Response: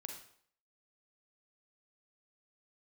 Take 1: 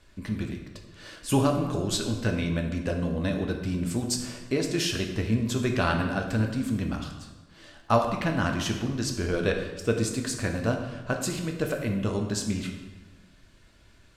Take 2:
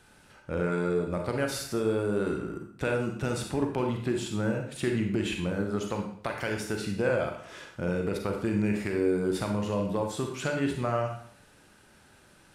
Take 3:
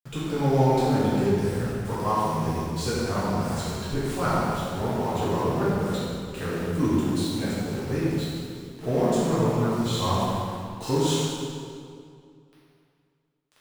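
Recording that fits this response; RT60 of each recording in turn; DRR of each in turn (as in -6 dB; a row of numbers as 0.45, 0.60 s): 2; 1.3, 0.60, 2.3 s; 2.5, 2.5, -10.5 dB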